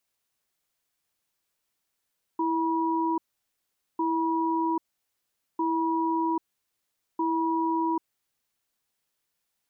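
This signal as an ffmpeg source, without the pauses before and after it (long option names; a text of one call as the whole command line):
ffmpeg -f lavfi -i "aevalsrc='0.0501*(sin(2*PI*328*t)+sin(2*PI*967*t))*clip(min(mod(t,1.6),0.79-mod(t,1.6))/0.005,0,1)':duration=5.91:sample_rate=44100" out.wav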